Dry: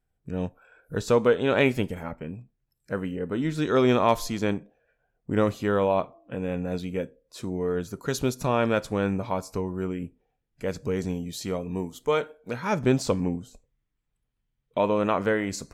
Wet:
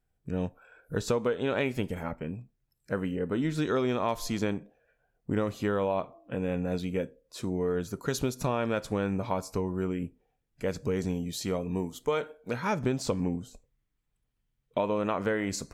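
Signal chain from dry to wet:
downward compressor 6 to 1, threshold −24 dBFS, peak gain reduction 9.5 dB

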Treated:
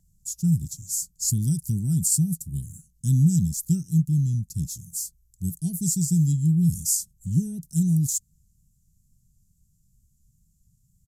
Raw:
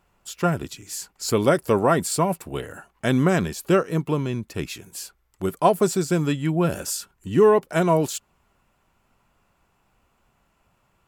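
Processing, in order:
elliptic band-stop filter 160–6,400 Hz, stop band 50 dB
downsampling to 32,000 Hz
tape wow and flutter 24 cents
level +6.5 dB

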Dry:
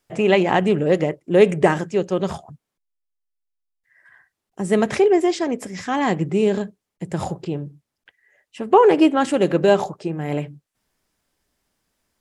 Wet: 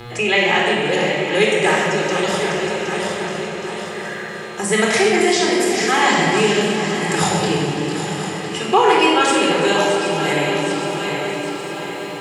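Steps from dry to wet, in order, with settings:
feedback delay that plays each chunk backwards 384 ms, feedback 58%, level −10 dB
high-pass filter 78 Hz
tilt shelving filter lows −10 dB
automatic gain control gain up to 9 dB
hum with harmonics 120 Hz, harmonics 37, −41 dBFS −5 dB per octave
on a send: echo machine with several playback heads 335 ms, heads first and third, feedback 53%, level −16.5 dB
on the sum: rectangular room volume 1,900 cubic metres, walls mixed, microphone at 4 metres
multiband upward and downward compressor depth 40%
level −4.5 dB

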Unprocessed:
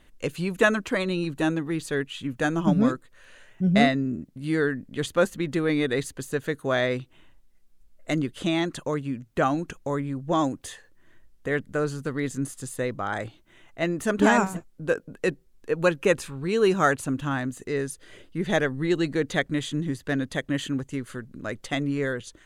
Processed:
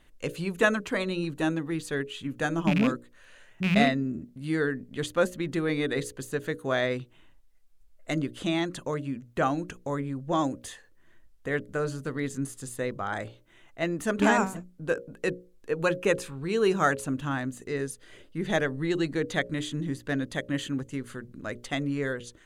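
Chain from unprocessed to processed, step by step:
loose part that buzzes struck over −22 dBFS, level −17 dBFS
mains-hum notches 60/120/180/240/300/360/420/480/540/600 Hz
level −2.5 dB

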